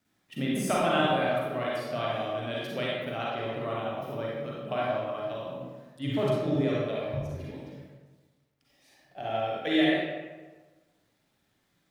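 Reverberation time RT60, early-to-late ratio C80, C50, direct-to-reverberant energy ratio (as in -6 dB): 1.3 s, 0.5 dB, -3.0 dB, -5.5 dB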